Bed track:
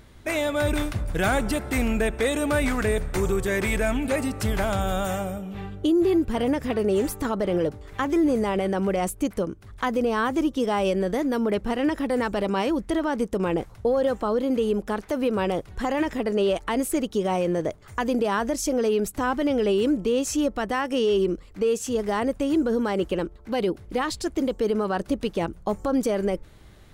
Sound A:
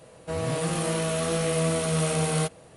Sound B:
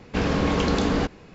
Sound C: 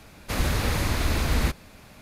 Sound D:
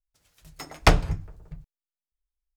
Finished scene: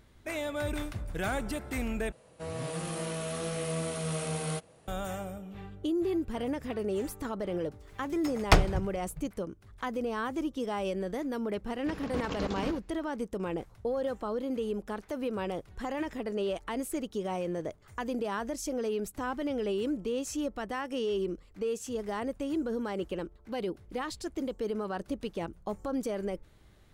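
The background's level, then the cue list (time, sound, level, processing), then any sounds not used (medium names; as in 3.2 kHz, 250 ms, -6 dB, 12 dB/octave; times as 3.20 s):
bed track -9.5 dB
2.12 s: replace with A -8.5 dB
7.65 s: add D -3.5 dB
11.72 s: add B -11 dB + level held to a coarse grid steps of 11 dB
not used: C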